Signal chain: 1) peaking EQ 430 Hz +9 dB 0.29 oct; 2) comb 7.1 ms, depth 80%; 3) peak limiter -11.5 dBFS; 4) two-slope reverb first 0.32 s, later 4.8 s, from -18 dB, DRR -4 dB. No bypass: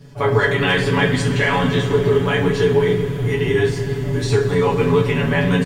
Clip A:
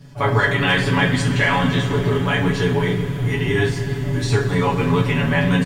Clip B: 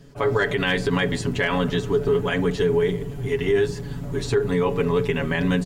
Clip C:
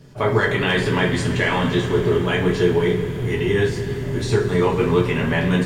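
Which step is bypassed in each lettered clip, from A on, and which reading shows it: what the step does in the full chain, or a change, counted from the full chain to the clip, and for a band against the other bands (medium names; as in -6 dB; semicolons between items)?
1, 500 Hz band -6.0 dB; 4, 125 Hz band -2.5 dB; 2, loudness change -2.0 LU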